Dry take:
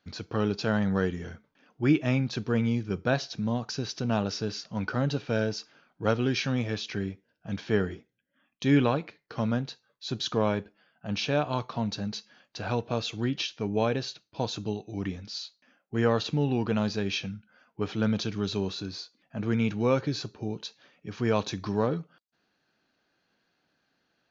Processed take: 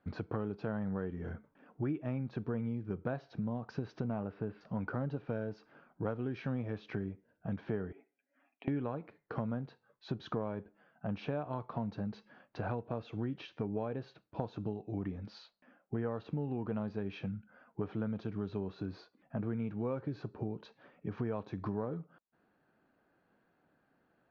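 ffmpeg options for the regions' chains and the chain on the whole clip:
-filter_complex "[0:a]asettb=1/sr,asplit=3[s0][s1][s2];[s0]atrim=end=4.084[s3];[s1]atrim=start=4.08:end=4.61,asetpts=PTS-STARTPTS,afade=t=in:d=0.004:c=qsin,afade=t=out:st=0.526:d=0.004:c=qsin,lowpass=f=2900:w=0.5412,lowpass=f=2900:w=1.3066,asoftclip=type=hard:threshold=0.141[s4];[s2]atrim=start=4.606[s5];[s3][s4]acrossfade=d=0.004:c1=hsin:c2=qsin[s6];[s6][s5]acrossfade=d=0.004:c1=qsin:c2=hsin,asettb=1/sr,asplit=3[s7][s8][s9];[s7]atrim=end=7.924[s10];[s8]atrim=start=7.92:end=8.68,asetpts=PTS-STARTPTS,afade=t=in:d=0.004:c=qsin,afade=t=out:st=0.756:d=0.004:c=qsin,aecho=1:1:7.2:0.64,atrim=end_sample=33516,acompressor=threshold=0.01:ratio=12:attack=3.2:release=140:knee=1:detection=peak,highpass=f=310:w=0.5412,highpass=f=310:w=1.3066,equalizer=f=330:t=q:w=4:g=-5,equalizer=f=520:t=q:w=4:g=-8,equalizer=f=740:t=q:w=4:g=6,equalizer=f=1100:t=q:w=4:g=-8,equalizer=f=1600:t=q:w=4:g=-4,equalizer=f=2400:t=q:w=4:g=9,lowpass=f=2800:w=0.5412,lowpass=f=2800:w=1.3066[s11];[s9]atrim=start=8.676[s12];[s10][s11]acrossfade=d=0.004:c1=hsin:c2=qsin[s13];[s13][s12]acrossfade=d=0.004:c1=qsin:c2=hsin,lowpass=1300,acompressor=threshold=0.0126:ratio=5,volume=1.5"

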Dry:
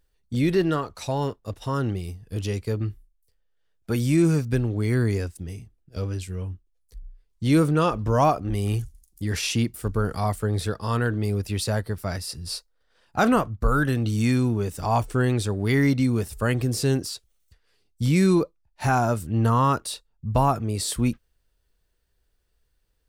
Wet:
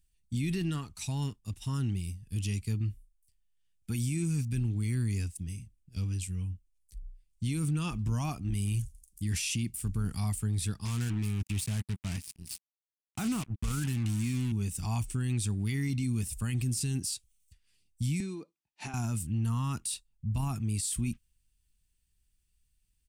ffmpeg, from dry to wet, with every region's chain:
-filter_complex "[0:a]asettb=1/sr,asplit=3[s0][s1][s2];[s0]atrim=end=10.854[s3];[s1]atrim=start=10.85:end=14.52,asetpts=PTS-STARTPTS,afade=t=in:d=0.004:c=qsin,afade=t=out:st=3.666:d=0.004:c=qsin,highpass=55,equalizer=f=5800:t=o:w=2.2:g=-6,acrusher=bits=4:mix=0:aa=0.5[s4];[s2]atrim=start=14.516[s5];[s3][s4]acrossfade=d=0.004:c1=hsin:c2=qsin[s6];[s6][s5]acrossfade=d=0.004:c1=qsin:c2=hsin,asettb=1/sr,asplit=3[s7][s8][s9];[s7]atrim=end=18.204[s10];[s8]atrim=start=18.2:end=18.94,asetpts=PTS-STARTPTS,afade=t=in:d=0.004:c=qsin,afade=t=out:st=0.736:d=0.004:c=qsin,highpass=270,lowpass=6200,equalizer=f=460:t=o:w=2.2:g=8,acompressor=threshold=0.0631:ratio=16:attack=3.2:release=140:knee=1:detection=peak[s11];[s9]atrim=start=18.936[s12];[s10][s11]acrossfade=d=0.004:c1=hsin:c2=qsin[s13];[s13][s12]acrossfade=d=0.004:c1=qsin:c2=hsin,firequalizer=gain_entry='entry(200,0);entry(530,-24);entry(790,-13);entry(1500,-12);entry(2500,1);entry(4000,-3);entry(8600,8);entry(13000,0)':delay=0.05:min_phase=1,alimiter=limit=0.0891:level=0:latency=1:release=11,volume=0.708"

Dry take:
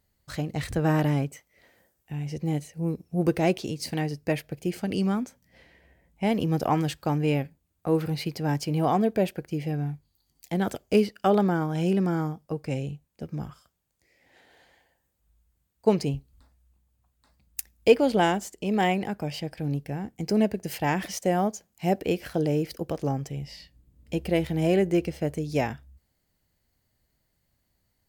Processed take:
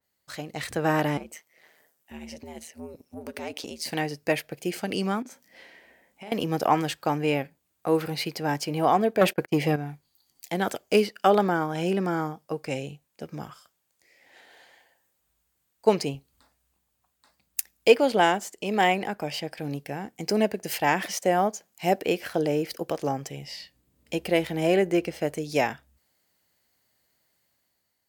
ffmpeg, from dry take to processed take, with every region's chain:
-filter_complex "[0:a]asettb=1/sr,asplit=3[s0][s1][s2];[s0]atrim=end=1.174[s3];[s1]atrim=start=1.17:end=3.86,asetpts=PTS-STARTPTS,afade=t=in:d=0.004:c=qsin,afade=t=out:st=2.686:d=0.004:c=qsin,highpass=46,acompressor=threshold=0.0316:ratio=6:attack=3.2:release=140:knee=1:detection=peak,aeval=exprs='val(0)*sin(2*PI*80*n/s)':c=same[s4];[s2]atrim=start=3.856[s5];[s3][s4]acrossfade=d=0.004:c1=hsin:c2=qsin[s6];[s6][s5]acrossfade=d=0.004:c1=qsin:c2=hsin,asettb=1/sr,asplit=3[s7][s8][s9];[s7]atrim=end=5.224[s10];[s8]atrim=start=5.22:end=6.32,asetpts=PTS-STARTPTS,afade=t=in:d=0.004:c=qsin,afade=t=out:st=1.096:d=0.004:c=qsin,lowshelf=f=170:t=q:w=1.5:g=-7,asplit=2[s11][s12];[s12]adelay=33,volume=0.708[s13];[s11][s13]amix=inputs=2:normalize=0,atrim=end_sample=48510,acompressor=threshold=0.0126:ratio=12:attack=3.2:release=140:knee=1:detection=peak[s14];[s9]atrim=start=6.316[s15];[s10][s14]acrossfade=d=0.004:c1=hsin:c2=qsin[s16];[s16][s15]acrossfade=d=0.004:c1=qsin:c2=hsin,asettb=1/sr,asplit=3[s17][s18][s19];[s17]atrim=end=9.214[s20];[s18]atrim=start=9.21:end=9.76,asetpts=PTS-STARTPTS,afade=t=in:d=0.004:c=qsin,afade=t=out:st=0.546:d=0.004:c=qsin,agate=range=0.0501:threshold=0.00631:ratio=16:release=100:detection=peak,aeval=exprs='0.224*sin(PI/2*1.78*val(0)/0.224)':c=same[s21];[s19]atrim=start=9.756[s22];[s20][s21]acrossfade=d=0.004:c1=hsin:c2=qsin[s23];[s23][s22]acrossfade=d=0.004:c1=qsin:c2=hsin,highpass=f=590:p=1,dynaudnorm=f=120:g=11:m=2,adynamicequalizer=threshold=0.0112:dfrequency=2600:dqfactor=0.7:tfrequency=2600:tqfactor=0.7:attack=5:release=100:ratio=0.375:range=2.5:mode=cutabove:tftype=highshelf"

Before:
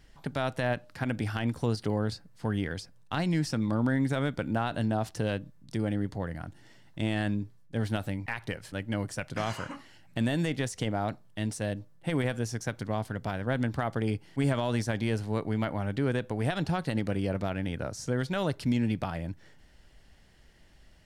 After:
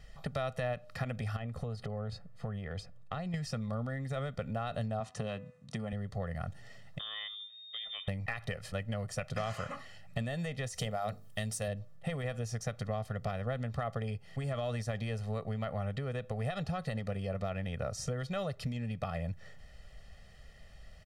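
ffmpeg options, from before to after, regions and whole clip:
-filter_complex "[0:a]asettb=1/sr,asplit=3[s0][s1][s2];[s0]atrim=end=1.364[s3];[s1]atrim=start=1.36:end=3.34,asetpts=PTS-STARTPTS,afade=t=in:d=0.004:c=qsin,afade=t=out:st=1.976:d=0.004:c=qsin,highshelf=f=2800:g=-9.5,bandreject=f=5600:w=15,acompressor=threshold=0.0178:ratio=6:attack=3.2:release=140:knee=1:detection=peak[s4];[s2]atrim=start=3.336[s5];[s3][s4]acrossfade=d=0.004:c1=hsin:c2=qsin[s6];[s6][s5]acrossfade=d=0.004:c1=qsin:c2=hsin,asettb=1/sr,asplit=3[s7][s8][s9];[s7]atrim=end=5.004[s10];[s8]atrim=start=5:end=5.93,asetpts=PTS-STARTPTS,afade=t=in:d=0.004:c=qsin,afade=t=out:st=0.926:d=0.004:c=qsin,highpass=130,equalizer=f=240:t=q:w=4:g=4,equalizer=f=500:t=q:w=4:g=-4,equalizer=f=1000:t=q:w=4:g=5,equalizer=f=4900:t=q:w=4:g=-5,lowpass=f=9700:w=0.5412,lowpass=f=9700:w=1.3066,bandreject=f=249.6:t=h:w=4,bandreject=f=499.2:t=h:w=4,bandreject=f=748.8:t=h:w=4,bandreject=f=998.4:t=h:w=4,bandreject=f=1248:t=h:w=4,bandreject=f=1497.6:t=h:w=4,bandreject=f=1747.2:t=h:w=4,bandreject=f=1996.8:t=h:w=4,bandreject=f=2246.4:t=h:w=4,bandreject=f=2496:t=h:w=4,bandreject=f=2745.6:t=h:w=4[s11];[s9]atrim=start=5.926[s12];[s10][s11]acrossfade=d=0.004:c1=hsin:c2=qsin[s13];[s13][s12]acrossfade=d=0.004:c1=qsin:c2=hsin,asettb=1/sr,asplit=3[s14][s15][s16];[s14]atrim=end=6.994[s17];[s15]atrim=start=6.99:end=8.08,asetpts=PTS-STARTPTS,afade=t=in:d=0.004:c=qsin,afade=t=out:st=1.086:d=0.004:c=qsin,acompressor=threshold=0.00708:ratio=2.5:attack=3.2:release=140:knee=1:detection=peak,lowpass=f=3100:t=q:w=0.5098,lowpass=f=3100:t=q:w=0.6013,lowpass=f=3100:t=q:w=0.9,lowpass=f=3100:t=q:w=2.563,afreqshift=-3700[s18];[s16]atrim=start=8.076[s19];[s17][s18]acrossfade=d=0.004:c1=hsin:c2=qsin[s20];[s20][s19]acrossfade=d=0.004:c1=qsin:c2=hsin,asettb=1/sr,asplit=3[s21][s22][s23];[s21]atrim=end=10.744[s24];[s22]atrim=start=10.74:end=11.68,asetpts=PTS-STARTPTS,afade=t=in:d=0.004:c=qsin,afade=t=out:st=0.936:d=0.004:c=qsin,aemphasis=mode=production:type=50kf,bandreject=f=50:t=h:w=6,bandreject=f=100:t=h:w=6,bandreject=f=150:t=h:w=6,bandreject=f=200:t=h:w=6,bandreject=f=250:t=h:w=6,bandreject=f=300:t=h:w=6,bandreject=f=350:t=h:w=6,bandreject=f=400:t=h:w=6,bandreject=f=450:t=h:w=6,bandreject=f=500:t=h:w=6[s25];[s23]atrim=start=11.676[s26];[s24][s25]acrossfade=d=0.004:c1=hsin:c2=qsin[s27];[s27][s26]acrossfade=d=0.004:c1=qsin:c2=hsin,acompressor=threshold=0.0178:ratio=6,highshelf=f=7600:g=-5.5,aecho=1:1:1.6:0.99"

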